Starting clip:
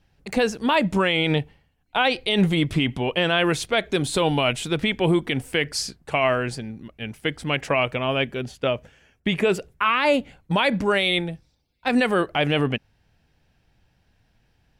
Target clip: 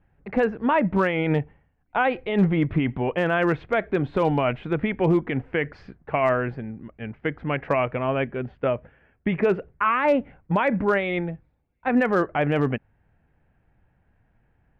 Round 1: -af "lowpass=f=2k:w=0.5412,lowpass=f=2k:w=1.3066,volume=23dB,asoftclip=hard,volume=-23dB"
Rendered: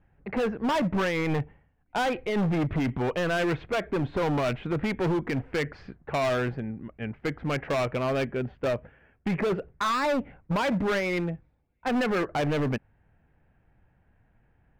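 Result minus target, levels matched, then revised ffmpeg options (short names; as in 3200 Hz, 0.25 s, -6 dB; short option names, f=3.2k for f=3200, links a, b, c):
overloaded stage: distortion +27 dB
-af "lowpass=f=2k:w=0.5412,lowpass=f=2k:w=1.3066,volume=11.5dB,asoftclip=hard,volume=-11.5dB"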